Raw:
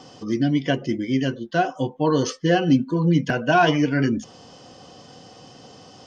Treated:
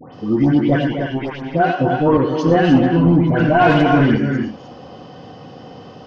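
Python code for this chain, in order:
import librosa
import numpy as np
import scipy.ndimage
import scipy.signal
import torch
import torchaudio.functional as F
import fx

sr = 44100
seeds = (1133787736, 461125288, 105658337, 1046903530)

y = fx.power_curve(x, sr, exponent=3.0, at=(0.76, 1.48))
y = fx.air_absorb(y, sr, metres=210.0)
y = fx.echo_multitap(y, sr, ms=(93, 116, 255, 304, 361), db=(-9.0, -11.5, -10.5, -8.0, -18.0))
y = 10.0 ** (-14.5 / 20.0) * np.tanh(y / 10.0 ** (-14.5 / 20.0))
y = fx.high_shelf(y, sr, hz=3700.0, db=-7.0)
y = fx.dispersion(y, sr, late='highs', ms=138.0, hz=1800.0)
y = fx.band_widen(y, sr, depth_pct=70, at=(2.17, 3.4))
y = y * librosa.db_to_amplitude(8.0)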